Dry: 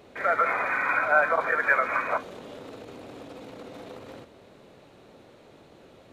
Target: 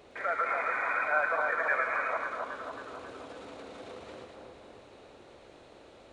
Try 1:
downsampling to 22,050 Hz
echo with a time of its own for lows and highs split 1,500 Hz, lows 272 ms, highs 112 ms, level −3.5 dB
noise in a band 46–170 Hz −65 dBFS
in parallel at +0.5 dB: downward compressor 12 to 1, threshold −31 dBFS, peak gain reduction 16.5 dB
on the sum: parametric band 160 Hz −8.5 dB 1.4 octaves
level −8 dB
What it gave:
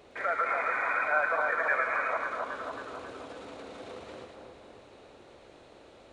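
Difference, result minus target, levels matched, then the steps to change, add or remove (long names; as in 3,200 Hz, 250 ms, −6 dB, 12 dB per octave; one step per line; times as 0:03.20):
downward compressor: peak gain reduction −7.5 dB
change: downward compressor 12 to 1, threshold −39 dBFS, peak gain reduction 24 dB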